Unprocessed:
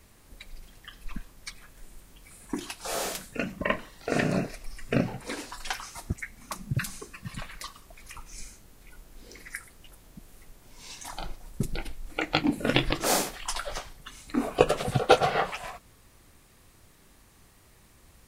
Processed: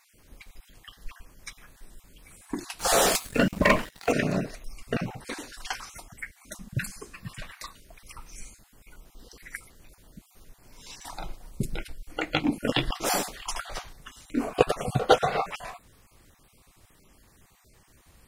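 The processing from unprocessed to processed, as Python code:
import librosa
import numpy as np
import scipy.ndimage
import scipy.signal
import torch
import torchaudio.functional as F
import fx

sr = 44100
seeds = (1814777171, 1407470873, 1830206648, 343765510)

y = fx.spec_dropout(x, sr, seeds[0], share_pct=24)
y = fx.leveller(y, sr, passes=3, at=(2.79, 4.12))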